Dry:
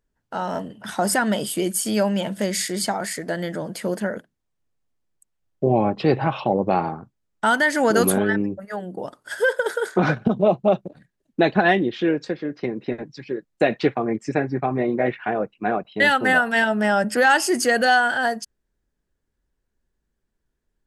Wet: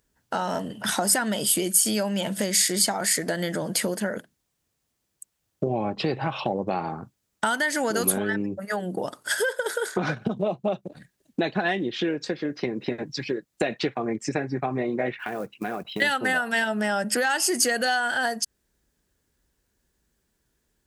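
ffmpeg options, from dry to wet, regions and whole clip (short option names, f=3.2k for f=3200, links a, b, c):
-filter_complex "[0:a]asettb=1/sr,asplit=3[a][b][c];[a]atrim=end=15.194[d];[b]atrim=start=15.19:end=16.02,asetpts=PTS-STARTPTS,afade=t=in:d=0.004:c=qsin,afade=t=out:st=0.826:d=0.004:c=qsin,equalizer=f=640:t=o:w=0.62:g=-3.5,acompressor=threshold=-30dB:ratio=8:attack=3.2:release=140:knee=1:detection=peak,acrusher=bits=8:mode=log:mix=0:aa=0.000001[e];[c]atrim=start=16.016[f];[d][e]acrossfade=d=0.004:c1=hsin:c2=qsin[g];[g][f]acrossfade=d=0.004:c1=qsin:c2=hsin,acompressor=threshold=-31dB:ratio=4,highpass=47,highshelf=f=3.2k:g=9.5,volume=5.5dB"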